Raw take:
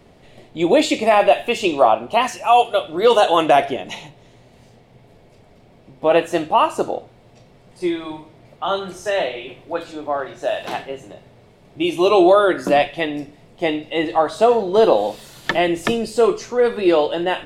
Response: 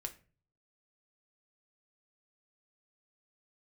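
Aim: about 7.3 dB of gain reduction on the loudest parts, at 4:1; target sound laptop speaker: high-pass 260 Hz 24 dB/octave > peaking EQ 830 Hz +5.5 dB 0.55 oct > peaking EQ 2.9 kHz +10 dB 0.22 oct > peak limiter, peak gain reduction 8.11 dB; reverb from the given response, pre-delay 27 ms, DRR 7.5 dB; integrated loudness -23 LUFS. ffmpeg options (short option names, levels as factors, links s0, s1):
-filter_complex "[0:a]acompressor=threshold=0.141:ratio=4,asplit=2[s0][s1];[1:a]atrim=start_sample=2205,adelay=27[s2];[s1][s2]afir=irnorm=-1:irlink=0,volume=0.531[s3];[s0][s3]amix=inputs=2:normalize=0,highpass=f=260:w=0.5412,highpass=f=260:w=1.3066,equalizer=f=830:t=o:w=0.55:g=5.5,equalizer=f=2900:t=o:w=0.22:g=10,alimiter=limit=0.251:level=0:latency=1"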